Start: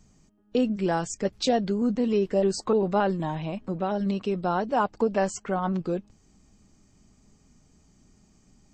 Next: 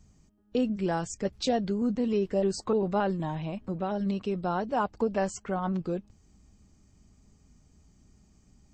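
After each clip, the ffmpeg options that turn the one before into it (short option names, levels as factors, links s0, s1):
-af "equalizer=f=64:w=0.79:g=8.5,volume=0.631"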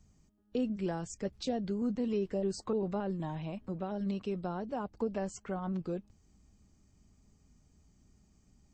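-filter_complex "[0:a]acrossover=split=480[s0][s1];[s1]acompressor=threshold=0.02:ratio=6[s2];[s0][s2]amix=inputs=2:normalize=0,volume=0.562"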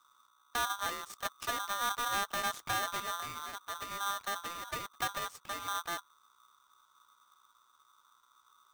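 -af "aeval=exprs='0.0891*(cos(1*acos(clip(val(0)/0.0891,-1,1)))-cos(1*PI/2))+0.0316*(cos(6*acos(clip(val(0)/0.0891,-1,1)))-cos(6*PI/2))':c=same,aeval=exprs='val(0)+0.000794*(sin(2*PI*60*n/s)+sin(2*PI*2*60*n/s)/2+sin(2*PI*3*60*n/s)/3+sin(2*PI*4*60*n/s)/4+sin(2*PI*5*60*n/s)/5)':c=same,aeval=exprs='val(0)*sgn(sin(2*PI*1200*n/s))':c=same,volume=0.531"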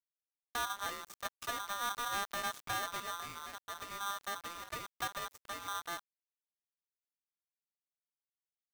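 -af "aeval=exprs='val(0)*gte(abs(val(0)),0.00631)':c=same,volume=0.668"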